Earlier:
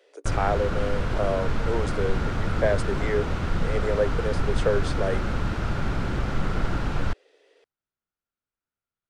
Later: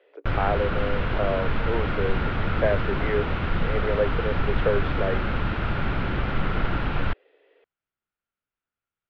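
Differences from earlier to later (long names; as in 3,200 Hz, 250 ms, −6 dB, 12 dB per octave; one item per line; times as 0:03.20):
background: remove head-to-tape spacing loss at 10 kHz 25 dB
master: add inverse Chebyshev low-pass filter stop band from 7,300 Hz, stop band 50 dB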